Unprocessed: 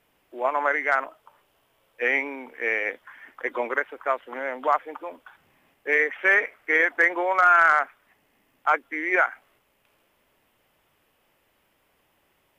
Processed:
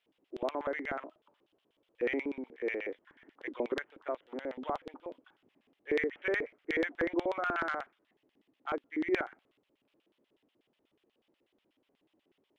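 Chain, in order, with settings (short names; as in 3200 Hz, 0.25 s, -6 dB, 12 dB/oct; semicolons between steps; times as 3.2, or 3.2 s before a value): tilt shelf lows +5.5 dB, about 1100 Hz; LFO band-pass square 8.2 Hz 320–3500 Hz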